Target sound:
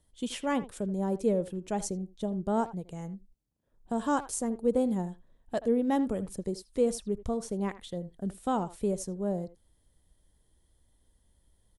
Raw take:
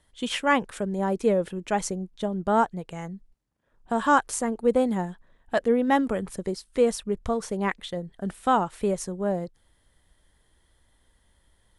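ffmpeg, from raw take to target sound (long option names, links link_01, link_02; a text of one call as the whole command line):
ffmpeg -i in.wav -filter_complex "[0:a]equalizer=frequency=1700:width=0.54:gain=-12.5,asplit=2[link_01][link_02];[link_02]adelay=80,highpass=300,lowpass=3400,asoftclip=type=hard:threshold=-17.5dB,volume=-15dB[link_03];[link_01][link_03]amix=inputs=2:normalize=0,volume=-2dB" out.wav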